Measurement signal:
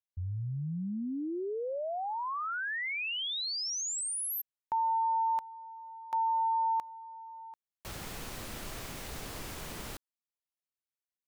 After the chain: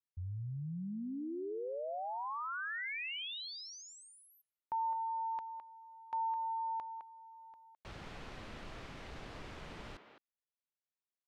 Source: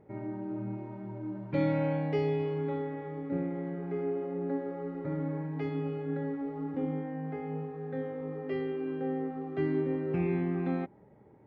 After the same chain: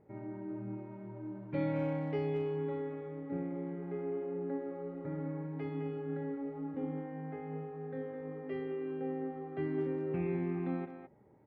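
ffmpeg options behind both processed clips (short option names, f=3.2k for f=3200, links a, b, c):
-filter_complex "[0:a]lowpass=3.5k,asplit=2[a][b];[b]adelay=210,highpass=300,lowpass=3.4k,asoftclip=type=hard:threshold=-26dB,volume=-8dB[c];[a][c]amix=inputs=2:normalize=0,volume=-5.5dB"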